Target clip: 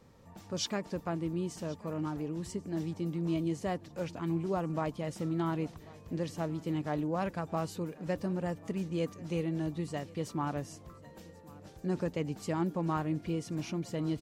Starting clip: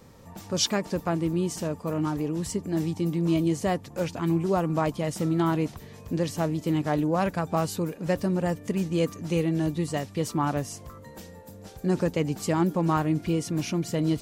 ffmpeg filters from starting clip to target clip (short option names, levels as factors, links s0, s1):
-filter_complex "[0:a]highshelf=f=7900:g=-8.5,asplit=2[s0][s1];[s1]aecho=0:1:1087|2174|3261:0.0794|0.035|0.0154[s2];[s0][s2]amix=inputs=2:normalize=0,volume=0.398"